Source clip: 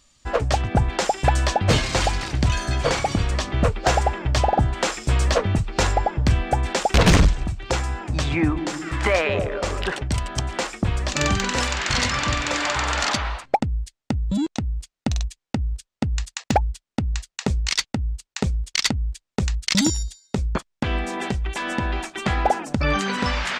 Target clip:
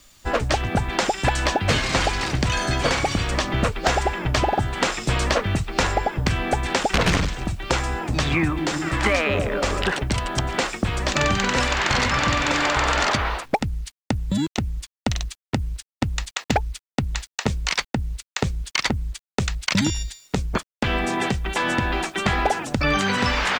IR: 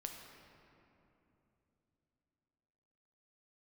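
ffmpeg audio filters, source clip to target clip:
-filter_complex "[0:a]asplit=2[a][b];[b]asetrate=22050,aresample=44100,atempo=2,volume=-9dB[c];[a][c]amix=inputs=2:normalize=0,acrossover=split=120|1200|2700|6300[d][e][f][g][h];[d]acompressor=threshold=-32dB:ratio=4[i];[e]acompressor=threshold=-27dB:ratio=4[j];[f]acompressor=threshold=-29dB:ratio=4[k];[g]acompressor=threshold=-35dB:ratio=4[l];[h]acompressor=threshold=-44dB:ratio=4[m];[i][j][k][l][m]amix=inputs=5:normalize=0,acrusher=bits=9:mix=0:aa=0.000001,volume=5dB"

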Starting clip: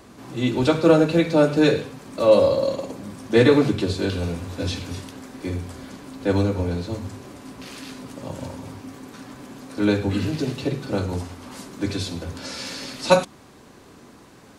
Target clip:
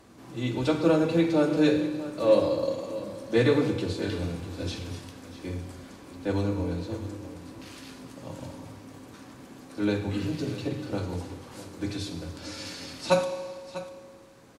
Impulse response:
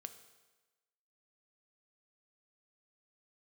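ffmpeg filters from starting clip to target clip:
-filter_complex "[0:a]aecho=1:1:645:0.188[a];[1:a]atrim=start_sample=2205,asetrate=31311,aresample=44100[b];[a][b]afir=irnorm=-1:irlink=0,volume=-3.5dB"

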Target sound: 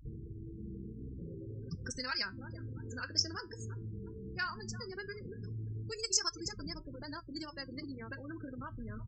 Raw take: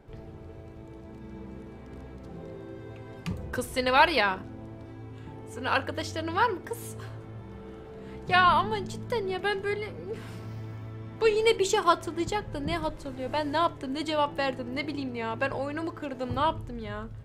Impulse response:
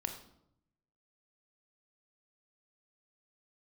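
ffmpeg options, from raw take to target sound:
-filter_complex "[0:a]aecho=1:1:654|1308|1962|2616:0.112|0.0527|0.0248|0.0116,acrossover=split=1500[a][b];[a]acompressor=threshold=-40dB:ratio=6[c];[c][b]amix=inputs=2:normalize=0,afftdn=nr=18:nf=-47,aeval=exprs='val(0)+0.001*(sin(2*PI*50*n/s)+sin(2*PI*2*50*n/s)/2+sin(2*PI*3*50*n/s)/3+sin(2*PI*4*50*n/s)/4+sin(2*PI*5*50*n/s)/5)':c=same,areverse,acompressor=mode=upward:threshold=-49dB:ratio=2.5,areverse,atempo=1.9,firequalizer=gain_entry='entry(100,0);entry(290,-3);entry(800,-17);entry(1500,-7);entry(2200,-17);entry(3600,-27);entry(5200,14);entry(11000,-25)':delay=0.05:min_phase=1,afftfilt=real='re*gte(hypot(re,im),0.00501)':imag='im*gte(hypot(re,im),0.00501)':win_size=1024:overlap=0.75,flanger=delay=5.7:depth=3.9:regen=-74:speed=0.14:shape=sinusoidal,volume=7dB"

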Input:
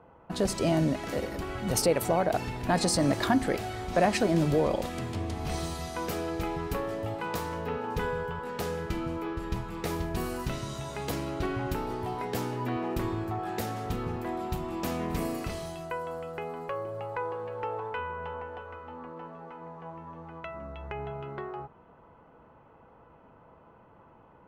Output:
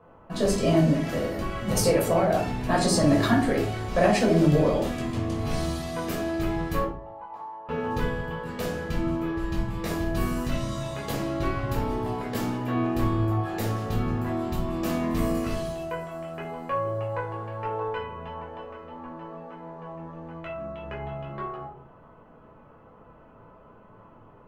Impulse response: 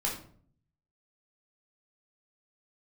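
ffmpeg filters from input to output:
-filter_complex "[0:a]asettb=1/sr,asplit=3[a][b][c];[a]atrim=end=6.844[d];[b]atrim=start=6.84:end=7.69,asetpts=PTS-STARTPTS,afade=t=in:d=0.004:c=qsin,afade=t=out:st=0.846:d=0.004:c=qsin,bandpass=f=880:t=q:w=6.3:csg=0[e];[c]atrim=start=7.686[f];[d][e]acrossfade=d=0.004:c1=hsin:c2=qsin[g];[g][f]acrossfade=d=0.004:c1=qsin:c2=hsin[h];[1:a]atrim=start_sample=2205,asetrate=57330,aresample=44100[i];[h][i]afir=irnorm=-1:irlink=0"

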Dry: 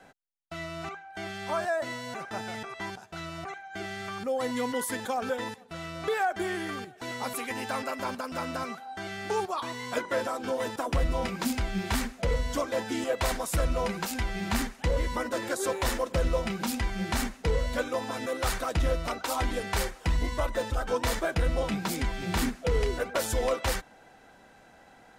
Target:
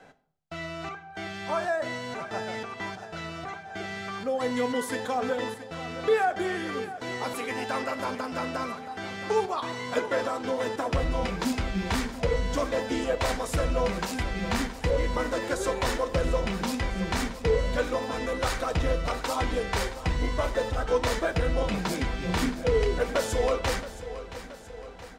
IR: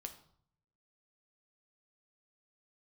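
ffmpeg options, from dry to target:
-filter_complex "[0:a]equalizer=f=460:t=o:w=0.31:g=4.5,aecho=1:1:673|1346|2019|2692|3365|4038:0.2|0.114|0.0648|0.037|0.0211|0.012,asplit=2[a][b];[1:a]atrim=start_sample=2205,lowpass=8.4k[c];[b][c]afir=irnorm=-1:irlink=0,volume=7dB[d];[a][d]amix=inputs=2:normalize=0,volume=-6dB"

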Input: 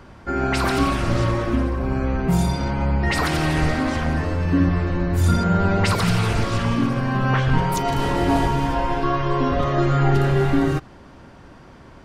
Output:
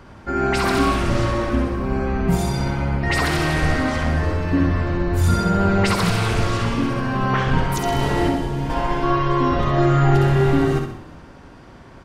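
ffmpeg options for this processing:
-filter_complex "[0:a]asplit=2[a][b];[b]asplit=4[c][d][e][f];[c]adelay=179,afreqshift=-37,volume=-19dB[g];[d]adelay=358,afreqshift=-74,volume=-25.6dB[h];[e]adelay=537,afreqshift=-111,volume=-32.1dB[i];[f]adelay=716,afreqshift=-148,volume=-38.7dB[j];[g][h][i][j]amix=inputs=4:normalize=0[k];[a][k]amix=inputs=2:normalize=0,asettb=1/sr,asplit=3[l][m][n];[l]atrim=end=8.284[o];[m]atrim=start=8.28:end=8.7,asetpts=PTS-STARTPTS,afade=t=in:d=0.004:c=qsin,afade=t=out:st=0.416:d=0.004:c=qsin,acrossover=split=600|1700[p][q][r];[p]acompressor=threshold=-21dB:ratio=4[s];[q]acompressor=threshold=-37dB:ratio=4[t];[r]acompressor=threshold=-43dB:ratio=4[u];[s][t][u]amix=inputs=3:normalize=0[v];[n]atrim=start=8.696[w];[o][v]acrossfade=d=0.004:c1=hsin:c2=qsin[x];[x][w]acrossfade=d=0.004:c1=qsin:c2=hsin,asplit=2[y][z];[z]aecho=0:1:66|132|198|264|330:0.562|0.231|0.0945|0.0388|0.0159[aa];[y][aa]amix=inputs=2:normalize=0"

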